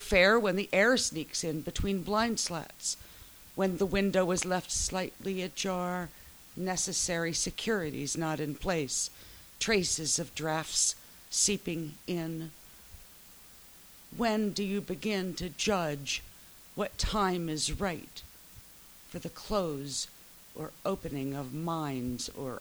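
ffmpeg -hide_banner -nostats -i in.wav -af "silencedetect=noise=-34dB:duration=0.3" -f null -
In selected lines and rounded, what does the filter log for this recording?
silence_start: 2.94
silence_end: 3.58 | silence_duration: 0.64
silence_start: 6.05
silence_end: 6.58 | silence_duration: 0.53
silence_start: 9.07
silence_end: 9.61 | silence_duration: 0.55
silence_start: 10.92
silence_end: 11.33 | silence_duration: 0.41
silence_start: 12.47
silence_end: 14.19 | silence_duration: 1.72
silence_start: 16.17
silence_end: 16.77 | silence_duration: 0.60
silence_start: 18.19
silence_end: 19.12 | silence_duration: 0.93
silence_start: 20.05
silence_end: 20.57 | silence_duration: 0.52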